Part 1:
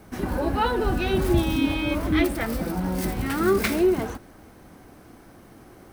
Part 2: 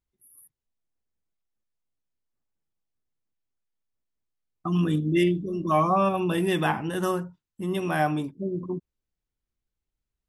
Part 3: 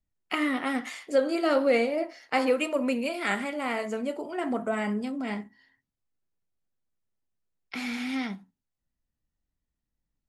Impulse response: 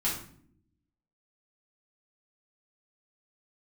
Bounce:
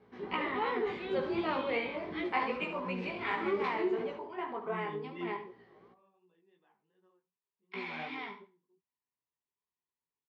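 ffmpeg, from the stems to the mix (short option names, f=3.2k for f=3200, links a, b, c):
-filter_complex "[0:a]aeval=exprs='val(0)+0.00501*(sin(2*PI*60*n/s)+sin(2*PI*2*60*n/s)/2+sin(2*PI*3*60*n/s)/3+sin(2*PI*4*60*n/s)/4+sin(2*PI*5*60*n/s)/5)':c=same,volume=-10dB,asplit=3[a][b][c];[b]volume=-16dB[d];[c]volume=-14.5dB[e];[1:a]volume=-13.5dB[f];[2:a]equalizer=f=200:t=o:w=0.33:g=-12,equalizer=f=500:t=o:w=0.33:g=-9,equalizer=f=1k:t=o:w=0.33:g=12,equalizer=f=2.5k:t=o:w=0.33:g=5,equalizer=f=10k:t=o:w=0.33:g=11,volume=-3.5dB,asplit=3[g][h][i];[h]volume=-10dB[j];[i]apad=whole_len=453441[k];[f][k]sidechaingate=range=-28dB:threshold=-50dB:ratio=16:detection=peak[l];[3:a]atrim=start_sample=2205[m];[d][m]afir=irnorm=-1:irlink=0[n];[e][j]amix=inputs=2:normalize=0,aecho=0:1:70|140|210|280:1|0.22|0.0484|0.0106[o];[a][l][g][n][o]amix=inputs=5:normalize=0,flanger=delay=16:depth=3.8:speed=2.7,highpass=240,equalizer=f=290:t=q:w=4:g=-9,equalizer=f=420:t=q:w=4:g=9,equalizer=f=640:t=q:w=4:g=-6,equalizer=f=1.4k:t=q:w=4:g=-5,equalizer=f=2.6k:t=q:w=4:g=-4,lowpass=f=3.6k:w=0.5412,lowpass=f=3.6k:w=1.3066"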